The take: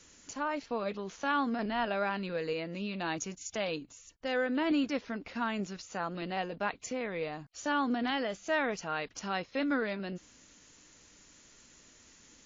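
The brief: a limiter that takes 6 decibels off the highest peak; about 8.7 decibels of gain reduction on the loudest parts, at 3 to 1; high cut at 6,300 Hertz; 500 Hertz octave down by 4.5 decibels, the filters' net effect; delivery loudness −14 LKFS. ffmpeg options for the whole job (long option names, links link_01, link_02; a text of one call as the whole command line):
ffmpeg -i in.wav -af "lowpass=6300,equalizer=frequency=500:width_type=o:gain=-5.5,acompressor=threshold=-39dB:ratio=3,volume=29dB,alimiter=limit=-3.5dB:level=0:latency=1" out.wav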